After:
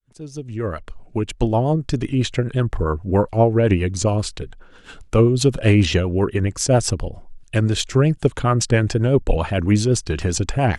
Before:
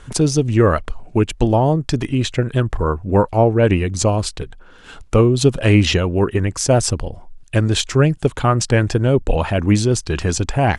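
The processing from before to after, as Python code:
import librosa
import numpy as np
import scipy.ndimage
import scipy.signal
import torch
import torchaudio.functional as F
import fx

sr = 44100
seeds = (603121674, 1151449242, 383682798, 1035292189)

y = fx.fade_in_head(x, sr, length_s=1.92)
y = fx.rotary(y, sr, hz=7.5)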